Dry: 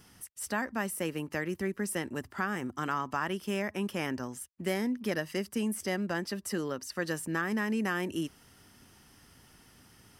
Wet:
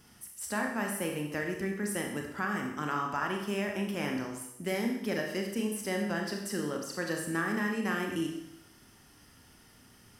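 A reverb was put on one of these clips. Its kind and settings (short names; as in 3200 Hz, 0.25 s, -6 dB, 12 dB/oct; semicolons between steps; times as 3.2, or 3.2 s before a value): Schroeder reverb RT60 0.82 s, combs from 27 ms, DRR 1.5 dB; gain -2 dB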